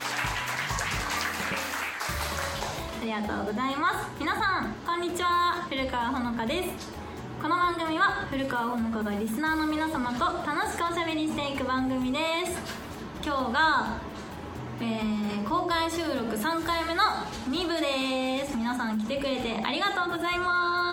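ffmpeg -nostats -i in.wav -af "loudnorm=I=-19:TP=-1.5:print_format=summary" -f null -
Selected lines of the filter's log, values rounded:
Input Integrated:    -28.3 LUFS
Input True Peak:     -12.0 dBTP
Input LRA:             1.7 LU
Input Threshold:     -38.4 LUFS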